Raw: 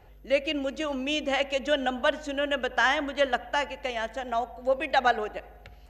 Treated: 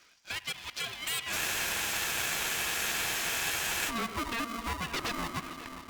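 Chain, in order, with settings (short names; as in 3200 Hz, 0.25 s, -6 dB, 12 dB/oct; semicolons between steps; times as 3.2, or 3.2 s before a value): low shelf 400 Hz -11 dB; compressor 2:1, threshold -40 dBFS, peak gain reduction 11.5 dB; band-pass sweep 5300 Hz -> 730 Hz, 0.3–3.26; rippled Chebyshev low-pass 7200 Hz, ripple 9 dB; sine folder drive 17 dB, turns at -30.5 dBFS; split-band echo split 2700 Hz, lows 0.538 s, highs 0.285 s, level -12.5 dB; spectral freeze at 1.4, 2.48 s; polarity switched at an audio rate 460 Hz; gain +1 dB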